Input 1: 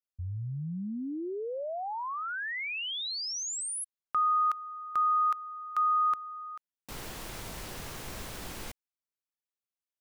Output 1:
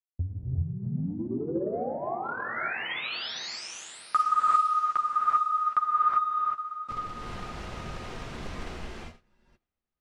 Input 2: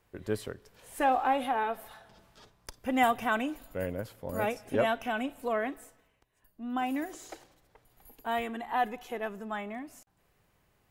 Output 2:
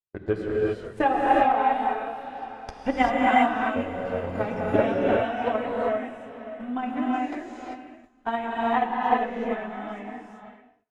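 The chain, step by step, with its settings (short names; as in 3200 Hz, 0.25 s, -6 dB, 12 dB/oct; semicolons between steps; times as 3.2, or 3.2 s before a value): high shelf 3900 Hz -5.5 dB; diffused feedback echo 0.578 s, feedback 43%, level -11 dB; gate -46 dBFS, range -35 dB; flange 0.88 Hz, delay 7.6 ms, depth 7.6 ms, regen -18%; transient shaper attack +12 dB, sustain 0 dB; air absorption 92 m; non-linear reverb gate 0.42 s rising, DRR -4.5 dB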